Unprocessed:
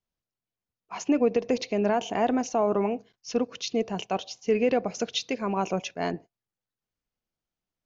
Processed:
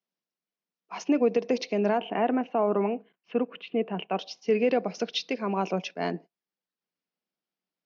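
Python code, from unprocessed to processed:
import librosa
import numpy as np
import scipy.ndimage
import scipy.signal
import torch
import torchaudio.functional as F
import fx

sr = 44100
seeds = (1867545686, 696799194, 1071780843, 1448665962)

y = fx.cheby1_bandpass(x, sr, low_hz=170.0, high_hz=fx.steps((0.0, 5800.0), (1.97, 2900.0), (4.17, 5400.0)), order=4)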